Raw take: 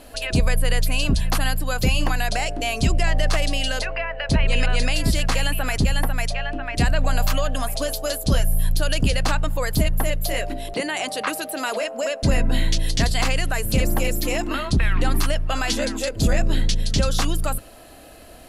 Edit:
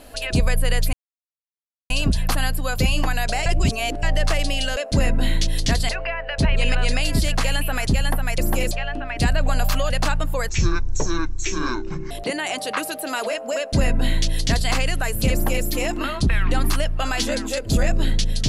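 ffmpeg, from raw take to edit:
-filter_complex "[0:a]asplit=11[s0][s1][s2][s3][s4][s5][s6][s7][s8][s9][s10];[s0]atrim=end=0.93,asetpts=PTS-STARTPTS,afade=t=out:st=0.926:d=0.004:c=hsin,apad=pad_dur=0.97[s11];[s1]atrim=start=0.93:end=2.492,asetpts=PTS-STARTPTS,afade=t=in:d=0.004:c=hsin[s12];[s2]atrim=start=2.488:end=3.062,asetpts=PTS-STARTPTS,areverse[s13];[s3]atrim=start=3.058:end=3.802[s14];[s4]atrim=start=12.078:end=13.202[s15];[s5]atrim=start=3.798:end=6.292[s16];[s6]atrim=start=13.818:end=14.152[s17];[s7]atrim=start=6.288:end=7.482[s18];[s8]atrim=start=9.128:end=9.724[s19];[s9]atrim=start=9.72:end=10.61,asetpts=PTS-STARTPTS,asetrate=24255,aresample=44100[s20];[s10]atrim=start=10.606[s21];[s11][s12]concat=n=2:v=0:a=1[s22];[s22][s13]acrossfade=d=0.004:c1=hsin:c2=hsin[s23];[s23][s14]acrossfade=d=0.004:c1=hsin:c2=hsin[s24];[s24][s15]acrossfade=d=0.004:c1=hsin:c2=hsin[s25];[s25][s16]acrossfade=d=0.004:c1=hsin:c2=hsin[s26];[s26][s17]acrossfade=d=0.004:c1=hsin:c2=hsin[s27];[s27][s18]acrossfade=d=0.004:c1=hsin:c2=hsin[s28];[s28][s19]acrossfade=d=0.004:c1=hsin:c2=hsin[s29];[s29][s20]acrossfade=d=0.004:c1=hsin:c2=hsin[s30];[s30][s21]acrossfade=d=0.004:c1=hsin:c2=hsin"

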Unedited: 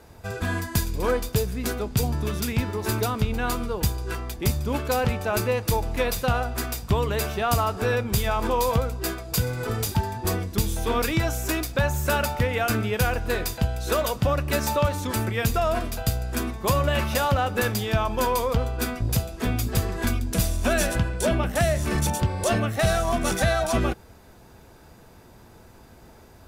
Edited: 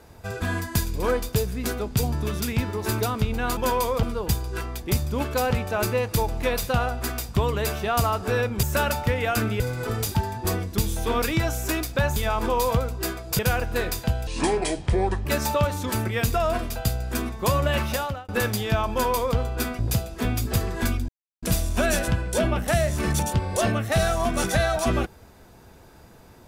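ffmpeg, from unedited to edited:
-filter_complex "[0:a]asplit=11[s0][s1][s2][s3][s4][s5][s6][s7][s8][s9][s10];[s0]atrim=end=3.572[s11];[s1]atrim=start=18.118:end=18.582[s12];[s2]atrim=start=3.568:end=8.172[s13];[s3]atrim=start=11.958:end=12.932[s14];[s4]atrim=start=9.398:end=11.962[s15];[s5]atrim=start=8.168:end=9.402[s16];[s6]atrim=start=12.928:end=13.814[s17];[s7]atrim=start=13.81:end=14.47,asetpts=PTS-STARTPTS,asetrate=29547,aresample=44100[s18];[s8]atrim=start=14.466:end=17.5,asetpts=PTS-STARTPTS,afade=t=out:st=2.594:d=0.44[s19];[s9]atrim=start=17.5:end=20.3,asetpts=PTS-STARTPTS,afade=t=in:d=0.004:c=hsin,afade=t=out:st=2.796:d=0.004:c=hsin,apad=pad_dur=0.34[s20];[s10]atrim=start=20.3,asetpts=PTS-STARTPTS,afade=t=in:d=0.004:c=hsin[s21];[s11][s12]acrossfade=d=0.004:c1=hsin:c2=hsin[s22];[s22][s13]acrossfade=d=0.004:c1=hsin:c2=hsin[s23];[s23][s14]acrossfade=d=0.004:c1=hsin:c2=hsin[s24];[s24][s15]acrossfade=d=0.004:c1=hsin:c2=hsin[s25];[s25][s16]acrossfade=d=0.004:c1=hsin:c2=hsin[s26];[s26][s17]acrossfade=d=0.004:c1=hsin:c2=hsin[s27];[s27][s18]acrossfade=d=0.004:c1=hsin:c2=hsin[s28];[s19][s20][s21]concat=n=3:v=0:a=1[s29];[s28][s29]acrossfade=d=0.004:c1=hsin:c2=hsin"

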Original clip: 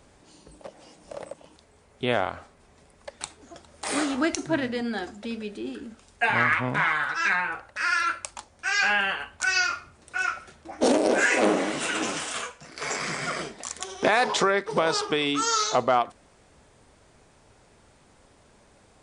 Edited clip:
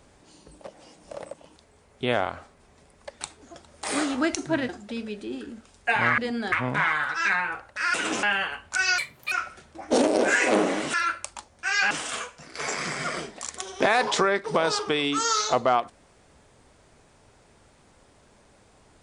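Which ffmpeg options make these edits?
-filter_complex "[0:a]asplit=10[s0][s1][s2][s3][s4][s5][s6][s7][s8][s9];[s0]atrim=end=4.692[s10];[s1]atrim=start=5.028:end=6.522[s11];[s2]atrim=start=4.688:end=5.032[s12];[s3]atrim=start=6.518:end=7.942[s13];[s4]atrim=start=11.838:end=12.132[s14];[s5]atrim=start=8.908:end=9.664[s15];[s6]atrim=start=9.66:end=10.22,asetpts=PTS-STARTPTS,asetrate=73206,aresample=44100,atrim=end_sample=14877,asetpts=PTS-STARTPTS[s16];[s7]atrim=start=10.216:end=11.842[s17];[s8]atrim=start=7.938:end=8.912[s18];[s9]atrim=start=12.128[s19];[s10][s11]acrossfade=d=0.004:c1=hsin:c2=hsin[s20];[s20][s12]acrossfade=d=0.004:c1=hsin:c2=hsin[s21];[s21][s13]acrossfade=d=0.004:c1=hsin:c2=hsin[s22];[s22][s14]acrossfade=d=0.004:c1=hsin:c2=hsin[s23];[s23][s15]acrossfade=d=0.004:c1=hsin:c2=hsin[s24];[s24][s16]acrossfade=d=0.004:c1=hsin:c2=hsin[s25];[s25][s17]acrossfade=d=0.004:c1=hsin:c2=hsin[s26];[s26][s18]acrossfade=d=0.004:c1=hsin:c2=hsin[s27];[s27][s19]acrossfade=d=0.004:c1=hsin:c2=hsin"

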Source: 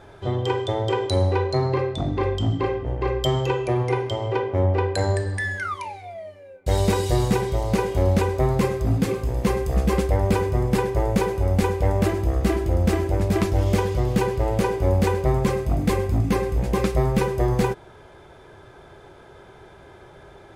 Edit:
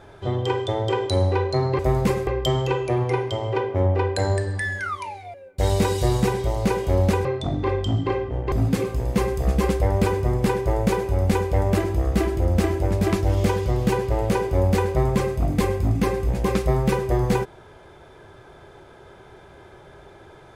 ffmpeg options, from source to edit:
-filter_complex "[0:a]asplit=6[s0][s1][s2][s3][s4][s5];[s0]atrim=end=1.792[s6];[s1]atrim=start=8.328:end=8.812[s7];[s2]atrim=start=3.058:end=6.132[s8];[s3]atrim=start=6.418:end=8.332[s9];[s4]atrim=start=1.788:end=3.062[s10];[s5]atrim=start=8.808[s11];[s6][s7]acrossfade=d=0.004:c1=hsin:c2=hsin[s12];[s12][s8]acrossfade=d=0.004:c1=hsin:c2=hsin[s13];[s13][s9]acrossfade=d=0.004:c1=hsin:c2=hsin[s14];[s14][s10]acrossfade=d=0.004:c1=hsin:c2=hsin[s15];[s15][s11]acrossfade=d=0.004:c1=hsin:c2=hsin"

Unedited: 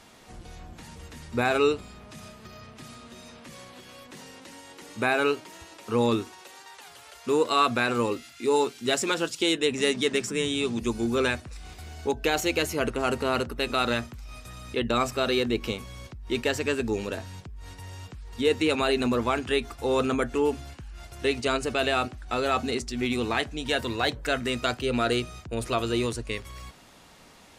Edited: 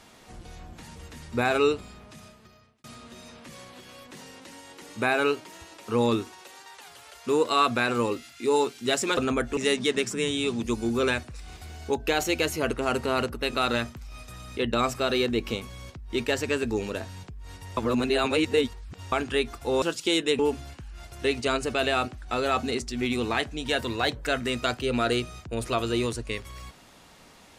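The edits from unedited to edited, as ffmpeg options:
-filter_complex "[0:a]asplit=8[s0][s1][s2][s3][s4][s5][s6][s7];[s0]atrim=end=2.84,asetpts=PTS-STARTPTS,afade=t=out:st=1.89:d=0.95[s8];[s1]atrim=start=2.84:end=9.172,asetpts=PTS-STARTPTS,afade=t=in:d=0.004:c=hsin[s9];[s2]atrim=start=19.988:end=20.392[s10];[s3]atrim=start=9.738:end=17.942[s11];[s4]atrim=start=17.938:end=19.292,asetpts=PTS-STARTPTS,areverse[s12];[s5]atrim=start=19.288:end=19.992[s13];[s6]atrim=start=9.168:end=9.742[s14];[s7]atrim=start=20.388[s15];[s8][s9]concat=n=2:v=0:a=1[s16];[s16][s10]acrossfade=d=0.004:c1=hsin:c2=hsin[s17];[s17][s11]acrossfade=d=0.004:c1=hsin:c2=hsin[s18];[s18][s12]acrossfade=d=0.004:c1=hsin:c2=hsin[s19];[s19][s13]acrossfade=d=0.004:c1=hsin:c2=hsin[s20];[s20][s14]acrossfade=d=0.004:c1=hsin:c2=hsin[s21];[s21][s15]acrossfade=d=0.004:c1=hsin:c2=hsin"

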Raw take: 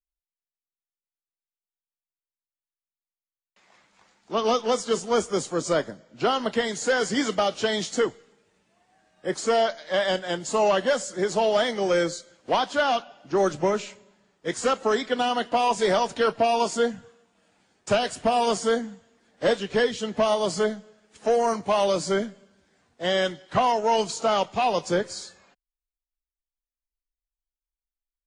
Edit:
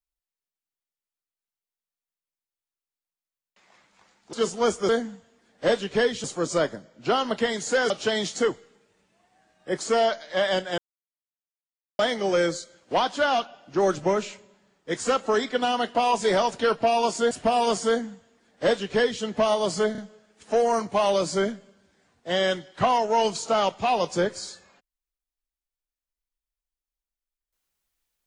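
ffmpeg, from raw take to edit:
-filter_complex "[0:a]asplit=10[s0][s1][s2][s3][s4][s5][s6][s7][s8][s9];[s0]atrim=end=4.332[s10];[s1]atrim=start=4.828:end=5.392[s11];[s2]atrim=start=18.678:end=20.032[s12];[s3]atrim=start=5.388:end=7.052[s13];[s4]atrim=start=7.468:end=10.35,asetpts=PTS-STARTPTS,afade=t=out:st=2.878:d=0.004:c=hsin[s14];[s5]atrim=start=10.35:end=11.56,asetpts=PTS-STARTPTS,volume=0[s15];[s6]atrim=start=11.56:end=16.882,asetpts=PTS-STARTPTS,afade=t=in:d=0.004:c=hsin[s16];[s7]atrim=start=18.108:end=20.752[s17];[s8]atrim=start=20.718:end=20.752[s18];[s9]atrim=start=20.718[s19];[s10][s11]acrossfade=d=0.004:c1=hsin:c2=hsin[s20];[s20][s12]acrossfade=d=0.004:c1=hsin:c2=hsin[s21];[s21][s13]acrossfade=d=0.004:c1=hsin:c2=hsin[s22];[s14][s15][s16]concat=n=3:v=0:a=1[s23];[s22][s23]acrossfade=d=0.004:c1=hsin:c2=hsin[s24];[s24][s17]acrossfade=d=0.004:c1=hsin:c2=hsin[s25];[s25][s18]acrossfade=d=0.004:c1=hsin:c2=hsin[s26];[s26][s19]acrossfade=d=0.004:c1=hsin:c2=hsin"

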